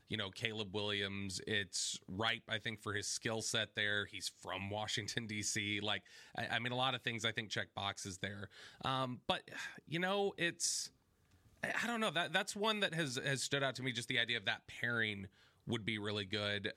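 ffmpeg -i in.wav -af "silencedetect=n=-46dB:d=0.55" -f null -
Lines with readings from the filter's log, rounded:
silence_start: 10.87
silence_end: 11.63 | silence_duration: 0.76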